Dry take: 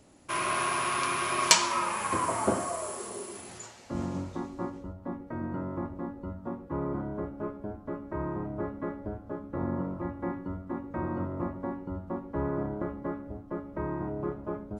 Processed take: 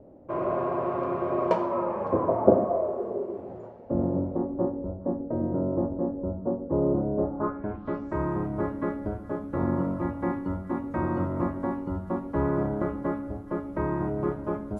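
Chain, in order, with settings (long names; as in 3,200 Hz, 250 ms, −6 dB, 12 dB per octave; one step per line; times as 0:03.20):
low-pass filter sweep 560 Hz → 11,000 Hz, 0:07.17–0:08.27
echo through a band-pass that steps 139 ms, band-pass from 240 Hz, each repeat 1.4 octaves, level −11 dB
level +5 dB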